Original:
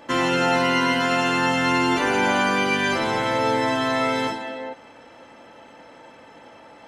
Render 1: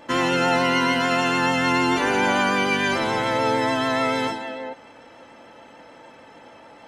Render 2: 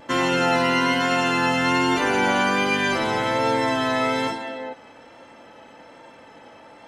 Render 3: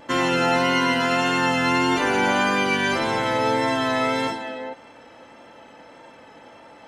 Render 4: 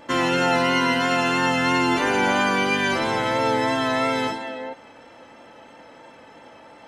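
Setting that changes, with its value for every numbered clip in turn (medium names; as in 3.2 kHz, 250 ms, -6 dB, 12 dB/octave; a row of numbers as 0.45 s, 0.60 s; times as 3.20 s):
vibrato, rate: 6.8 Hz, 1.2 Hz, 1.7 Hz, 3 Hz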